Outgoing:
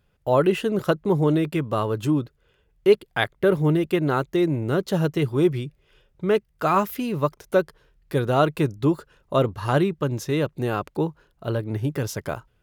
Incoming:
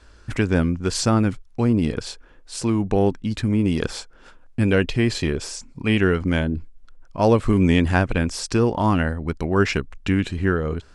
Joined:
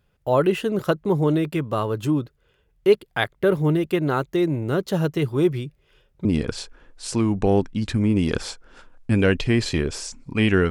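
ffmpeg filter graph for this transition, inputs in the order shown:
-filter_complex "[0:a]apad=whole_dur=10.7,atrim=end=10.7,atrim=end=6.252[a];[1:a]atrim=start=1.738:end=6.19[b];[a][b]acrossfade=d=0.004:c1=hsin:c2=hsin"

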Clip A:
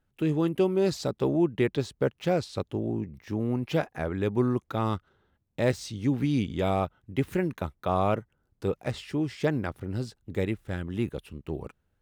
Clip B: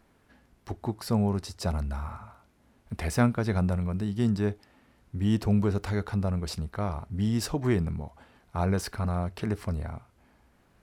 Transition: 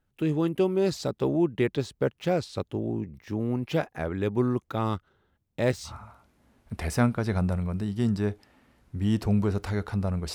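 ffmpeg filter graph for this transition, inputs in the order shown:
-filter_complex "[0:a]apad=whole_dur=10.34,atrim=end=10.34,atrim=end=5.95,asetpts=PTS-STARTPTS[a];[1:a]atrim=start=2.03:end=6.54,asetpts=PTS-STARTPTS[b];[a][b]acrossfade=d=0.12:c1=tri:c2=tri"

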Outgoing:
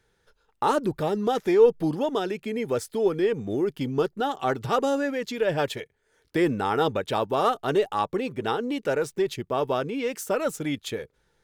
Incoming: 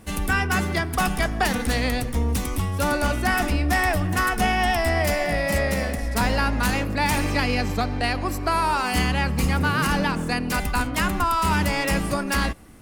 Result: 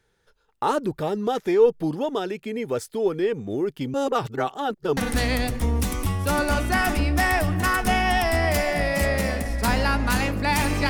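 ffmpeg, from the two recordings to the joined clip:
-filter_complex "[0:a]apad=whole_dur=10.89,atrim=end=10.89,asplit=2[a][b];[a]atrim=end=3.942[c];[b]atrim=start=3.938:end=4.972,asetpts=PTS-STARTPTS,areverse[d];[1:a]atrim=start=1.498:end=7.42[e];[c][d]acrossfade=d=0.004:c1=hsin:c2=hsin[f];[f][e]acrossfade=d=0.004:c1=hsin:c2=hsin"

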